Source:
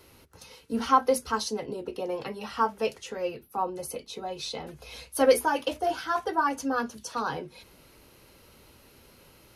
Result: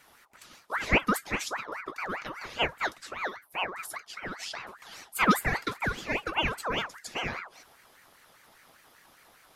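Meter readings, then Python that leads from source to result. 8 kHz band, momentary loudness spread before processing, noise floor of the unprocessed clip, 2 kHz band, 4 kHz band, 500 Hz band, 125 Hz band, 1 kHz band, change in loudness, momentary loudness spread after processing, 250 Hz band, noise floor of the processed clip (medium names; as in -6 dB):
-3.0 dB, 14 LU, -57 dBFS, +6.0 dB, +2.0 dB, -9.0 dB, +8.0 dB, -4.5 dB, -2.0 dB, 14 LU, -2.0 dB, -60 dBFS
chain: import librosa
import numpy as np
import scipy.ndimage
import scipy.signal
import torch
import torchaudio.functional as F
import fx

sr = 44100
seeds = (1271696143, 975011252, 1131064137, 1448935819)

y = fx.ring_lfo(x, sr, carrier_hz=1300.0, swing_pct=45, hz=5.0)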